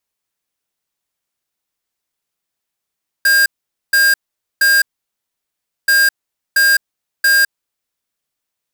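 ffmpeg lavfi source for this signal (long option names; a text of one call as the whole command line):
ffmpeg -f lavfi -i "aevalsrc='0.282*(2*lt(mod(1610*t,1),0.5)-1)*clip(min(mod(mod(t,2.63),0.68),0.21-mod(mod(t,2.63),0.68))/0.005,0,1)*lt(mod(t,2.63),2.04)':duration=5.26:sample_rate=44100" out.wav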